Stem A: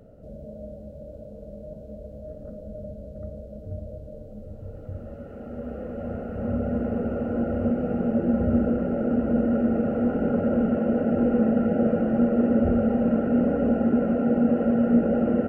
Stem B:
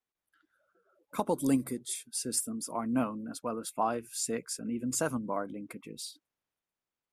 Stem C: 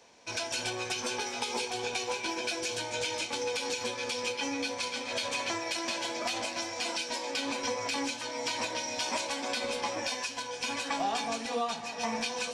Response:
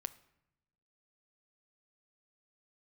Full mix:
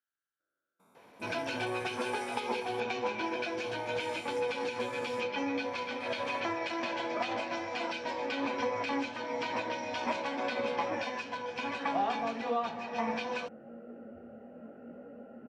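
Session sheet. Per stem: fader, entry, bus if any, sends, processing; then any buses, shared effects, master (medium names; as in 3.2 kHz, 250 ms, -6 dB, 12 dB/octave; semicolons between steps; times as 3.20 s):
-18.0 dB, 1.50 s, no send, bass shelf 310 Hz -11.5 dB; detune thickener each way 31 cents
-14.0 dB, 0.00 s, no send, spectrogram pixelated in time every 400 ms
+1.5 dB, 0.95 s, no send, low-pass 2.2 kHz 12 dB/octave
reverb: none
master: gain riding 2 s; high-pass 90 Hz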